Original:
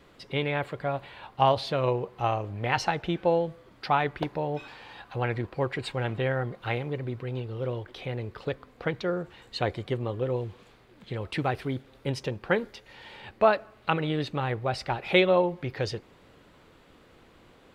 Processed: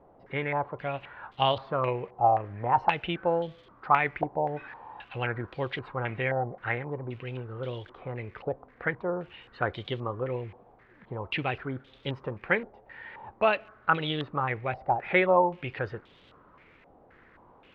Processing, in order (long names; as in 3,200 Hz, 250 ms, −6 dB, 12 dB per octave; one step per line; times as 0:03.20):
surface crackle 260 per second −47 dBFS
low-pass on a step sequencer 3.8 Hz 770–3,400 Hz
level −4 dB